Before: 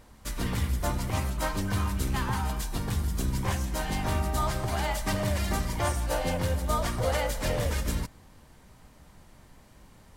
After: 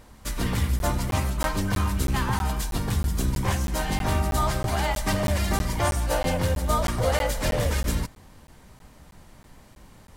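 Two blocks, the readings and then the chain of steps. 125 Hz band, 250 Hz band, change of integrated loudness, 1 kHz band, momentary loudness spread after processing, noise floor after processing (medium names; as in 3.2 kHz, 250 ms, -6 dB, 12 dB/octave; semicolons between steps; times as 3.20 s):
+4.0 dB, +4.0 dB, +4.0 dB, +4.0 dB, 3 LU, -51 dBFS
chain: crackling interface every 0.32 s, samples 512, zero, from 0.79 s; trim +4 dB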